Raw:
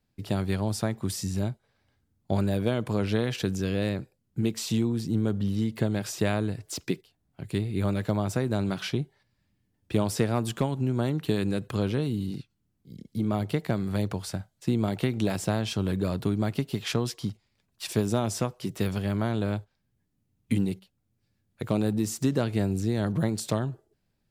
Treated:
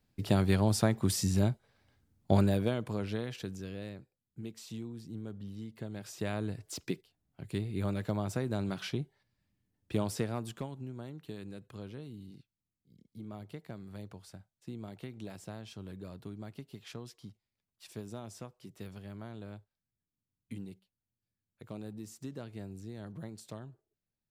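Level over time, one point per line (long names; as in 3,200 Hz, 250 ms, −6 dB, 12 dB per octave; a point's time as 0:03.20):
0:02.37 +1 dB
0:02.81 −7 dB
0:04.00 −16 dB
0:05.79 −16 dB
0:06.49 −6.5 dB
0:10.05 −6.5 dB
0:11.04 −17.5 dB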